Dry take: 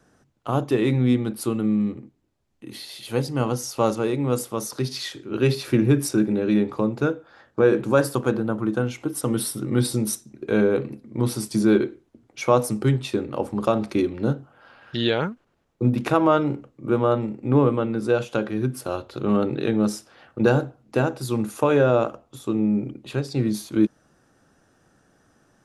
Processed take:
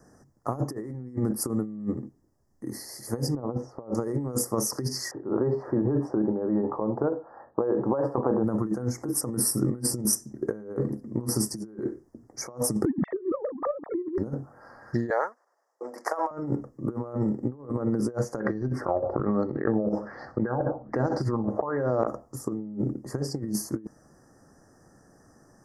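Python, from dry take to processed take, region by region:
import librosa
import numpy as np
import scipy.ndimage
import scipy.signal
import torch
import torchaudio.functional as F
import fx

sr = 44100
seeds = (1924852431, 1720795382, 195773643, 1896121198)

y = fx.chain(x, sr, fx.lowpass(hz=1100.0, slope=12),
    fx.dynamic_eq(hz=490.0, q=0.77, threshold_db=-33.0, ratio=4.0, max_db=4), at=(3.35, 3.95))
y = fx.chain(y, sr, fx.low_shelf(hz=340.0, db=-10.5),
    fx.over_compress(threshold_db=-27.0, ratio=-1.0),
    fx.lowpass_res(hz=870.0, q=1.8), at=(5.11, 8.44))
y = fx.chain(y, sr, fx.sine_speech(),
    fx.low_shelf(hz=450.0, db=11.5),
    fx.over_compress(threshold_db=-20.0, ratio=-0.5), at=(12.85, 14.18))
y = fx.chain(y, sr, fx.highpass(hz=590.0, slope=24),
    fx.high_shelf(hz=9700.0, db=-8.5), at=(15.1, 16.31))
y = fx.chain(y, sr, fx.filter_lfo_lowpass(shape='sine', hz=1.2, low_hz=580.0, high_hz=4400.0, q=5.8),
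    fx.echo_feedback(ms=63, feedback_pct=44, wet_db=-20),
    fx.over_compress(threshold_db=-26.0, ratio=-1.0), at=(18.4, 22.07))
y = scipy.signal.sosfilt(scipy.signal.ellip(3, 1.0, 40, [1800.0, 5100.0], 'bandstop', fs=sr, output='sos'), y)
y = fx.peak_eq(y, sr, hz=1500.0, db=-10.0, octaves=0.22)
y = fx.over_compress(y, sr, threshold_db=-27.0, ratio=-0.5)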